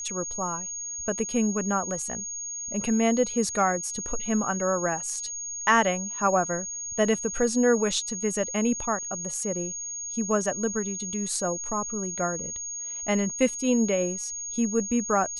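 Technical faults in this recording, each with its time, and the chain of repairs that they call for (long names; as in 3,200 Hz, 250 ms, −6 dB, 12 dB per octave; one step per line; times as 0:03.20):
whistle 6,600 Hz −32 dBFS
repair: notch filter 6,600 Hz, Q 30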